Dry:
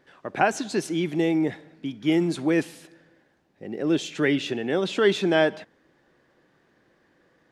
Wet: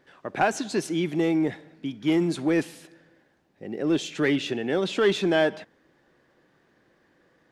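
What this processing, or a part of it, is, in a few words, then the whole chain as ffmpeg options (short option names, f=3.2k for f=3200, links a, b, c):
parallel distortion: -filter_complex "[0:a]asplit=2[a][b];[b]asoftclip=type=hard:threshold=-18.5dB,volume=-4dB[c];[a][c]amix=inputs=2:normalize=0,volume=-4.5dB"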